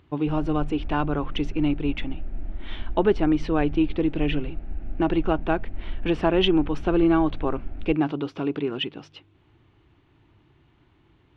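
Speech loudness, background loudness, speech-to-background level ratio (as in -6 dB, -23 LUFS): -25.0 LUFS, -39.0 LUFS, 14.0 dB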